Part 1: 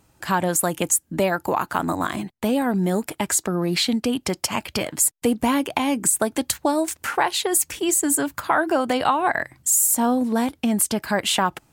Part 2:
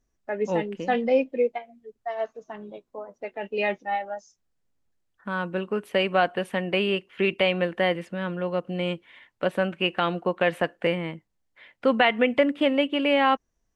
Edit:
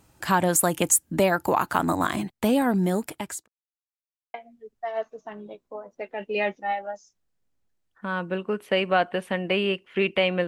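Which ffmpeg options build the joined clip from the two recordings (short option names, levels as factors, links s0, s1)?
-filter_complex "[0:a]apad=whole_dur=10.47,atrim=end=10.47,asplit=2[s0][s1];[s0]atrim=end=3.48,asetpts=PTS-STARTPTS,afade=t=out:st=2.45:d=1.03:c=qsin[s2];[s1]atrim=start=3.48:end=4.34,asetpts=PTS-STARTPTS,volume=0[s3];[1:a]atrim=start=1.57:end=7.7,asetpts=PTS-STARTPTS,afade=t=in:d=0.004:c=hsin[s4];[s2][s3][s4]concat=n=3:v=0:a=1"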